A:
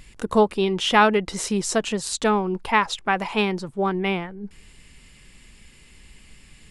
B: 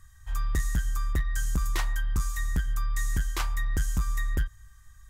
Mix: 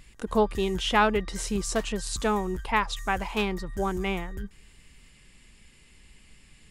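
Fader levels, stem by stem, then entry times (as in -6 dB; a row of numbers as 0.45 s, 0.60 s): -5.5 dB, -10.5 dB; 0.00 s, 0.00 s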